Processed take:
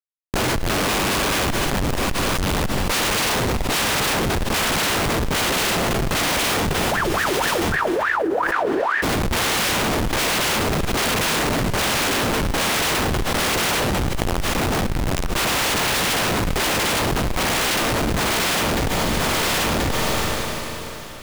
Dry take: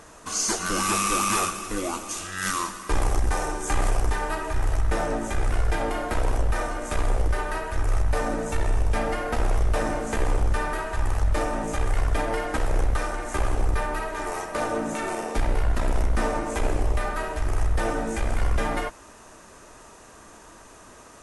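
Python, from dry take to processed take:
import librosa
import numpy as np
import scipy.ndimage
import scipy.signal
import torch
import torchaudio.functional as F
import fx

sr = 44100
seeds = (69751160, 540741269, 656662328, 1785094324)

y = fx.spec_flatten(x, sr, power=0.16)
y = scipy.signal.sosfilt(scipy.signal.butter(2, 150.0, 'highpass', fs=sr, output='sos'), y)
y = fx.hum_notches(y, sr, base_hz=60, count=10)
y = fx.dynamic_eq(y, sr, hz=3100.0, q=1.0, threshold_db=-35.0, ratio=4.0, max_db=5)
y = fx.schmitt(y, sr, flips_db=-20.0)
y = fx.wah_lfo(y, sr, hz=fx.line((6.72, 5.2), (9.02, 1.8)), low_hz=330.0, high_hz=1800.0, q=20.0, at=(6.72, 9.02), fade=0.02)
y = y + 10.0 ** (-22.5 / 20.0) * np.pad(y, (int(1031 * sr / 1000.0), 0))[:len(y)]
y = fx.rev_schroeder(y, sr, rt60_s=3.7, comb_ms=33, drr_db=19.0)
y = fx.env_flatten(y, sr, amount_pct=100)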